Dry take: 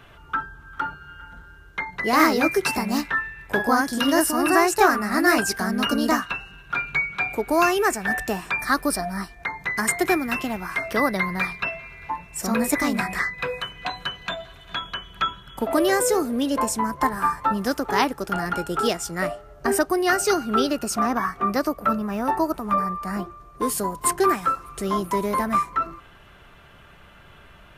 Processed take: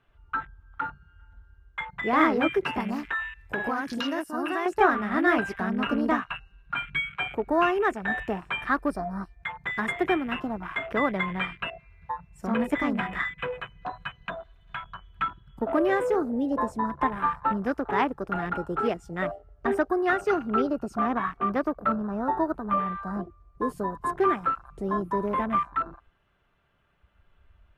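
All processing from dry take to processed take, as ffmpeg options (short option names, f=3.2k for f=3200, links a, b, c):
-filter_complex "[0:a]asettb=1/sr,asplit=3[a][b][c];[a]atrim=end=2.804[d];[b]atrim=start=2.8:end=4.66,asetpts=PTS-STARTPTS,afade=t=in:d=0.004:c=qsin,afade=t=out:st=1.856:d=0.004:c=qsin,highshelf=f=2.8k:g=10.5,acompressor=threshold=-21dB:ratio=4:attack=3.2:release=140:knee=1:detection=peak[e];[c]atrim=start=4.656[f];[d][e]acrossfade=d=0.004:c1=hsin:c2=qsin[g];[g][f]acrossfade=d=0.004:c1=qsin:c2=hsin,aemphasis=mode=reproduction:type=cd,afwtdn=0.0282,volume=-3.5dB"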